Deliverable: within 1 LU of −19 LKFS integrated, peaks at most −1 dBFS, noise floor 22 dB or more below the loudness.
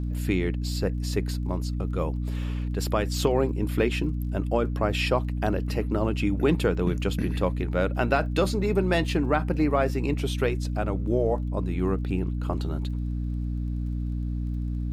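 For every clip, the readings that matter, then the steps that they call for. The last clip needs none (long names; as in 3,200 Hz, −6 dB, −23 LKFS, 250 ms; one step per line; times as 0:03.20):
crackle rate 26 per second; mains hum 60 Hz; hum harmonics up to 300 Hz; level of the hum −26 dBFS; integrated loudness −27.0 LKFS; sample peak −9.5 dBFS; target loudness −19.0 LKFS
→ click removal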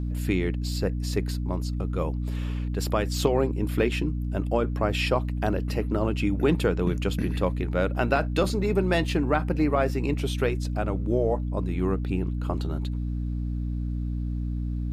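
crackle rate 0 per second; mains hum 60 Hz; hum harmonics up to 300 Hz; level of the hum −26 dBFS
→ mains-hum notches 60/120/180/240/300 Hz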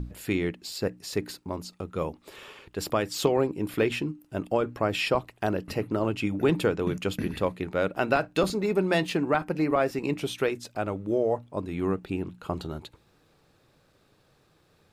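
mains hum none found; integrated loudness −28.5 LKFS; sample peak −8.5 dBFS; target loudness −19.0 LKFS
→ level +9.5 dB
brickwall limiter −1 dBFS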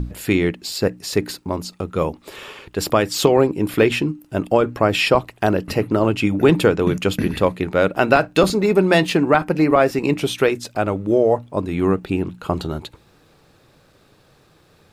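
integrated loudness −19.0 LKFS; sample peak −1.0 dBFS; background noise floor −55 dBFS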